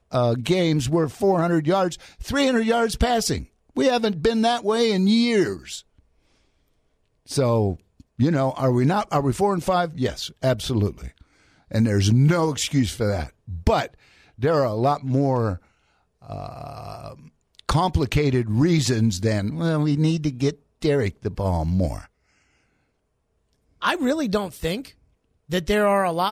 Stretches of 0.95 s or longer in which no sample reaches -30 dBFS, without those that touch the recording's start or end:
5.79–7.3
22.01–23.82

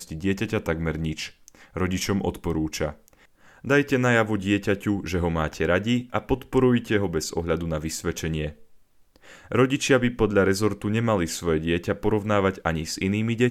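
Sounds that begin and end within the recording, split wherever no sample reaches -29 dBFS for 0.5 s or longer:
3.65–8.49

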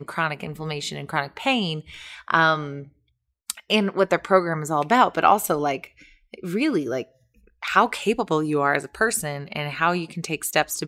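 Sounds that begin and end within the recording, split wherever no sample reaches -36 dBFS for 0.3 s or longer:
3.5–5.87
6.34–7.03

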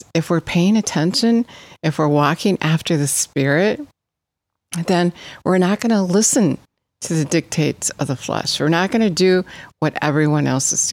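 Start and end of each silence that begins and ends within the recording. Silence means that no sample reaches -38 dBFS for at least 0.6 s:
3.85–4.72

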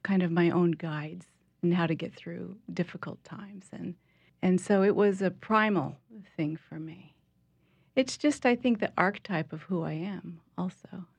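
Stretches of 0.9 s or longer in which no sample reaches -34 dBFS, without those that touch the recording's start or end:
6.87–7.97

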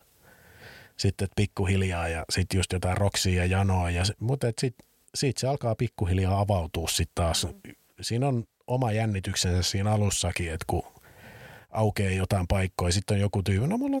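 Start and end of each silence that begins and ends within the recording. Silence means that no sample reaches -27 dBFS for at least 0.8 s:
10.8–11.75

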